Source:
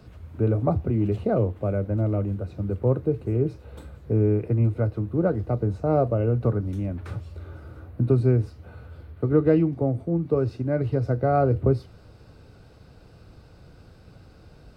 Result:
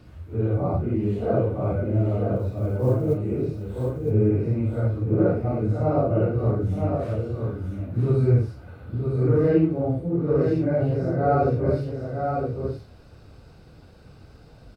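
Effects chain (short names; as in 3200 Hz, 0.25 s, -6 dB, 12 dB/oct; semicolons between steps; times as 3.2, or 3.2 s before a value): phase scrambler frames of 0.2 s; 2.36–3.18 companded quantiser 8-bit; echo 0.965 s -5 dB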